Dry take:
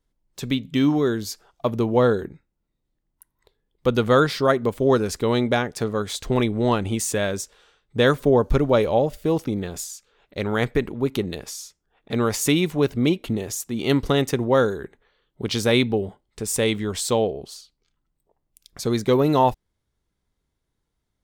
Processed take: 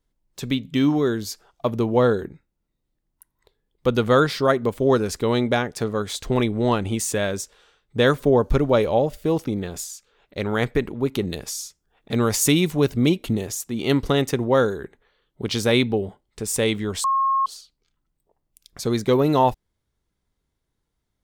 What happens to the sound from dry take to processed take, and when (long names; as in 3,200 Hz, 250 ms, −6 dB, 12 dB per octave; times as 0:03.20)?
0:11.22–0:13.47: bass and treble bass +3 dB, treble +5 dB
0:17.04–0:17.46: beep over 1,080 Hz −17 dBFS